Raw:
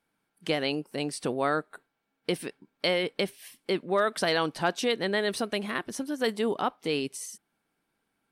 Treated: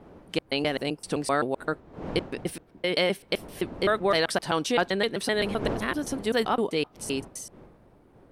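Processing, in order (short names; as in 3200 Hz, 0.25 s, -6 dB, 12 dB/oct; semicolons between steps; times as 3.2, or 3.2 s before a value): slices in reverse order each 0.129 s, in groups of 2; wind noise 460 Hz -44 dBFS; gain +2 dB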